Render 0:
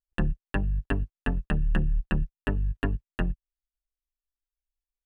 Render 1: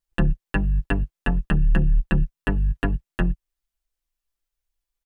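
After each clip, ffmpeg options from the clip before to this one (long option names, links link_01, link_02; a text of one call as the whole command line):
ffmpeg -i in.wav -filter_complex "[0:a]aecho=1:1:5.9:0.47,asplit=2[link_01][link_02];[link_02]alimiter=limit=-20dB:level=0:latency=1:release=216,volume=1.5dB[link_03];[link_01][link_03]amix=inputs=2:normalize=0" out.wav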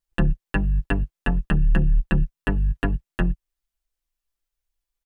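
ffmpeg -i in.wav -af anull out.wav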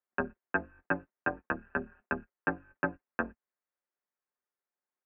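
ffmpeg -i in.wav -af "highpass=frequency=390:width_type=q:width=0.5412,highpass=frequency=390:width_type=q:width=1.307,lowpass=frequency=2100:width_type=q:width=0.5176,lowpass=frequency=2100:width_type=q:width=0.7071,lowpass=frequency=2100:width_type=q:width=1.932,afreqshift=-120" out.wav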